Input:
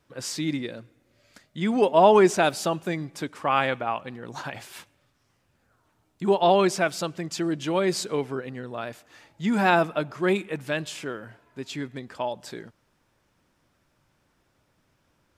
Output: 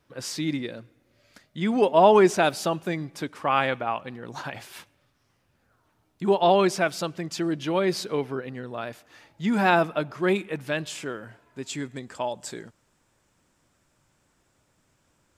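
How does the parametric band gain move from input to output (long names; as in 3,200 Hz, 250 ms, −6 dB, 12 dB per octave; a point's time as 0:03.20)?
parametric band 7,600 Hz 0.45 octaves
−3 dB
from 0:07.59 −9 dB
from 0:08.49 −3 dB
from 0:10.90 +4 dB
from 0:11.67 +11 dB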